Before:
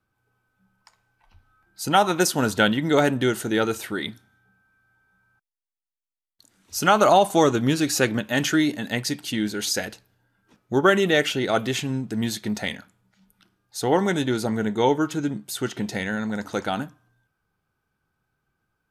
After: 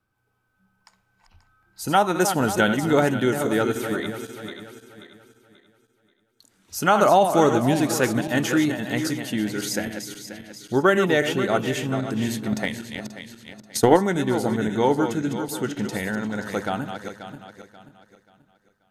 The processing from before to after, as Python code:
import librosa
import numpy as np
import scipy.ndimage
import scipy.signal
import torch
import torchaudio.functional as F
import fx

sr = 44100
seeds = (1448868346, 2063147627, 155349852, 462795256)

y = fx.reverse_delay_fb(x, sr, ms=267, feedback_pct=57, wet_db=-8.0)
y = fx.dynamic_eq(y, sr, hz=4200.0, q=0.86, threshold_db=-39.0, ratio=4.0, max_db=-6)
y = fx.transient(y, sr, attack_db=11, sustain_db=-2, at=(12.52, 14.0))